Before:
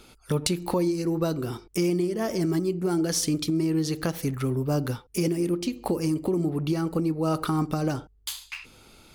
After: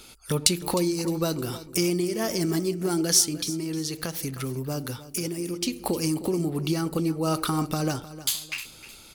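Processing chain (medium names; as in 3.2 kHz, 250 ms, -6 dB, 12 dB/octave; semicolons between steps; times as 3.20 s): treble shelf 2.5 kHz +10.5 dB; 3.22–5.62 s: compression 2:1, threshold -30 dBFS, peak gain reduction 7.5 dB; feedback delay 308 ms, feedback 31%, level -15.5 dB; trim -1 dB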